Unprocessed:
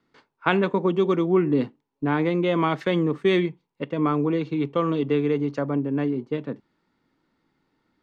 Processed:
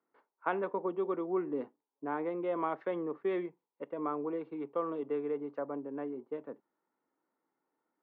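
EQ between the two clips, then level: HPF 470 Hz 12 dB/oct; LPF 1100 Hz 12 dB/oct; -6.5 dB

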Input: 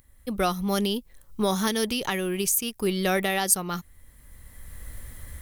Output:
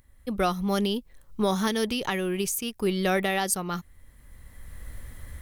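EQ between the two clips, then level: high shelf 5700 Hz -8 dB; 0.0 dB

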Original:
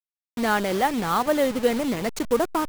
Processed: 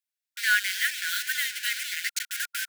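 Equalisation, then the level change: brick-wall FIR high-pass 1400 Hz; +5.5 dB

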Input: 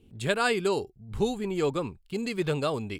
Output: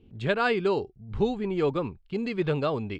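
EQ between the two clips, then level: air absorption 210 m; +2.0 dB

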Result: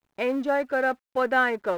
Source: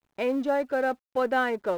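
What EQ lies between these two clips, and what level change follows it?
dynamic EQ 1700 Hz, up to +6 dB, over -41 dBFS, Q 0.98; 0.0 dB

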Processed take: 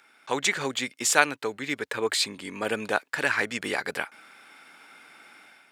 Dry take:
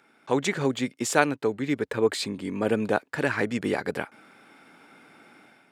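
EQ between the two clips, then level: tilt shelf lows -8.5 dB, about 680 Hz; -2.0 dB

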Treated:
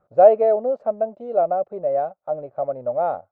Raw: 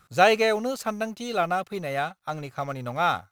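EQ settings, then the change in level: synth low-pass 600 Hz, resonance Q 6.6; low shelf 240 Hz -11.5 dB; -1.0 dB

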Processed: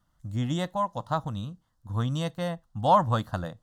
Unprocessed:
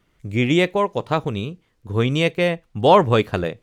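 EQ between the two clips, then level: fixed phaser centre 980 Hz, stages 4; -4.5 dB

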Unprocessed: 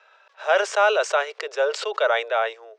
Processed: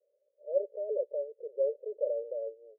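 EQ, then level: HPF 380 Hz; Chebyshev low-pass 580 Hz, order 8; tilt +5 dB/oct; 0.0 dB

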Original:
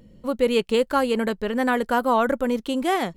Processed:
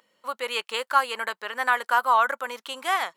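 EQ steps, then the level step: resonant high-pass 1100 Hz, resonance Q 1.7; 0.0 dB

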